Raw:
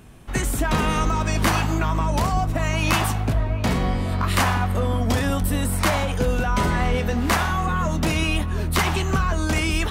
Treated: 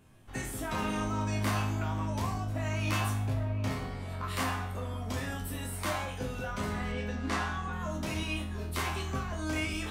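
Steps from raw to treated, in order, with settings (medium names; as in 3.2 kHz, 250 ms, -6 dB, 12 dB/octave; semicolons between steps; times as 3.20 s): chord resonator F2 minor, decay 0.48 s; 6.92–7.73 s: low-pass 7.4 kHz 12 dB/octave; trim +3 dB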